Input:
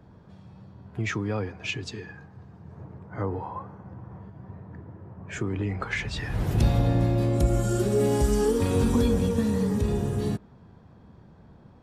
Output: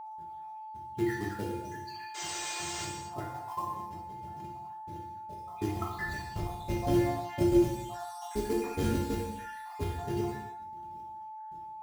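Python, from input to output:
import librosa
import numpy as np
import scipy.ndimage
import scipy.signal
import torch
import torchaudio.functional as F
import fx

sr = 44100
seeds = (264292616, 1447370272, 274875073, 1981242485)

p1 = fx.spec_dropout(x, sr, seeds[0], share_pct=79)
p2 = fx.highpass(p1, sr, hz=54.0, slope=6)
p3 = fx.high_shelf(p2, sr, hz=2400.0, db=-8.0)
p4 = fx.hum_notches(p3, sr, base_hz=60, count=9)
p5 = fx.rider(p4, sr, range_db=5, speed_s=2.0)
p6 = p4 + (p5 * 10.0 ** (-2.5 / 20.0))
p7 = fx.spec_paint(p6, sr, seeds[1], shape='noise', start_s=2.14, length_s=0.71, low_hz=300.0, high_hz=8700.0, level_db=-35.0)
p8 = fx.quant_float(p7, sr, bits=2)
p9 = fx.comb_fb(p8, sr, f0_hz=350.0, decay_s=0.22, harmonics='all', damping=0.0, mix_pct=90)
p10 = p9 + fx.echo_single(p9, sr, ms=167, db=-23.5, dry=0)
p11 = fx.rev_gated(p10, sr, seeds[2], gate_ms=330, shape='falling', drr_db=-2.0)
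p12 = p11 + 10.0 ** (-46.0 / 20.0) * np.sin(2.0 * np.pi * 870.0 * np.arange(len(p11)) / sr)
y = p12 * 10.0 ** (5.0 / 20.0)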